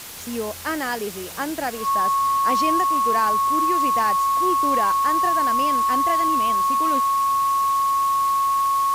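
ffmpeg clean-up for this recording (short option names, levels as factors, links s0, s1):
-af "adeclick=t=4,bandreject=f=1100:w=30,afwtdn=0.016"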